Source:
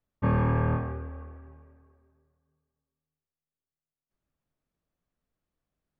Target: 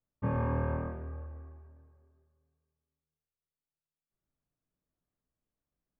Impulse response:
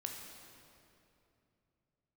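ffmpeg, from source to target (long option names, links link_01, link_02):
-filter_complex "[0:a]highshelf=frequency=2200:gain=-9.5[link_01];[1:a]atrim=start_sample=2205,afade=type=out:start_time=0.41:duration=0.01,atrim=end_sample=18522,asetrate=61740,aresample=44100[link_02];[link_01][link_02]afir=irnorm=-1:irlink=0"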